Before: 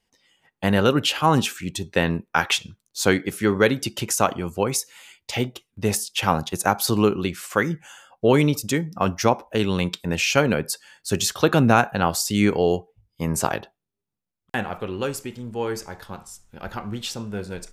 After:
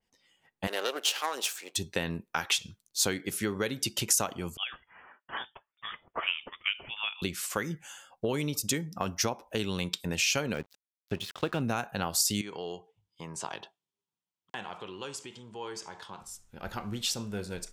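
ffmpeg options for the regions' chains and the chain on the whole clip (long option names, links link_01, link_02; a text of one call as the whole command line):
ffmpeg -i in.wav -filter_complex "[0:a]asettb=1/sr,asplit=3[link_01][link_02][link_03];[link_01]atrim=end=0.674[link_04];[link_02]atrim=start=0.67:end=1.76,asetpts=PTS-STARTPTS,afade=type=in:duration=0.004:curve=qsin,afade=type=out:start_time=1.086:duration=0.004:curve=qsin,aeval=exprs='if(lt(val(0),0),0.251*val(0),val(0))':channel_layout=same,highpass=frequency=410:width=0.5412,highpass=frequency=410:width=1.3066[link_05];[link_03]atrim=start=1.756[link_06];[link_04][link_05]acrossfade=duration=0.004:curve1=hsin:curve2=qsin[link_07];[link_07][link_06]acrossfade=duration=0.004:curve1=qsin:curve2=hsin,asettb=1/sr,asplit=3[link_08][link_09][link_10];[link_08]atrim=end=4.574[link_11];[link_09]atrim=start=4.57:end=7.22,asetpts=PTS-STARTPTS,afade=type=in:duration=0.004:curve=qsin,afade=type=out:start_time=2.646:duration=0.004:curve=qsin,highpass=1200,lowpass=frequency=3200:width_type=q:width=0.5098,lowpass=frequency=3200:width_type=q:width=0.6013,lowpass=frequency=3200:width_type=q:width=0.9,lowpass=frequency=3200:width_type=q:width=2.563,afreqshift=-3800[link_12];[link_10]atrim=start=7.216[link_13];[link_11][link_12]acrossfade=duration=0.004:curve1=hsin:curve2=qsin[link_14];[link_14][link_13]acrossfade=duration=0.004:curve1=qsin:curve2=hsin,asettb=1/sr,asplit=3[link_15][link_16][link_17];[link_15]atrim=end=10.544[link_18];[link_16]atrim=start=10.54:end=11.61,asetpts=PTS-STARTPTS,afade=type=in:duration=0.004:curve=qsin,afade=type=out:start_time=1.066:duration=0.004:curve=qsin,lowpass=frequency=3300:width=0.5412,lowpass=frequency=3300:width=1.3066,aeval=exprs='sgn(val(0))*max(abs(val(0))-0.0133,0)':channel_layout=same[link_19];[link_17]atrim=start=11.606[link_20];[link_18][link_19]acrossfade=duration=0.004:curve1=hsin:curve2=qsin[link_21];[link_21][link_20]acrossfade=duration=0.004:curve1=qsin:curve2=hsin,asettb=1/sr,asplit=3[link_22][link_23][link_24];[link_22]atrim=end=12.414[link_25];[link_23]atrim=start=12.41:end=16.21,asetpts=PTS-STARTPTS,afade=type=in:duration=0.004:curve=qsin,afade=type=out:start_time=3.796:duration=0.004:curve=qsin,acompressor=threshold=-36dB:ratio=2:attack=3.2:release=140:knee=1:detection=peak,highpass=160,equalizer=frequency=240:width_type=q:width=4:gain=-7,equalizer=frequency=550:width_type=q:width=4:gain=-3,equalizer=frequency=980:width_type=q:width=4:gain=8,equalizer=frequency=3200:width_type=q:width=4:gain=7,lowpass=frequency=8700:width=0.5412,lowpass=frequency=8700:width=1.3066[link_26];[link_24]atrim=start=16.206[link_27];[link_25][link_26]acrossfade=duration=0.004:curve1=hsin:curve2=qsin[link_28];[link_28][link_27]acrossfade=duration=0.004:curve1=qsin:curve2=hsin,acompressor=threshold=-23dB:ratio=4,adynamicequalizer=threshold=0.00631:dfrequency=2800:dqfactor=0.7:tfrequency=2800:tqfactor=0.7:attack=5:release=100:ratio=0.375:range=4:mode=boostabove:tftype=highshelf,volume=-5.5dB" out.wav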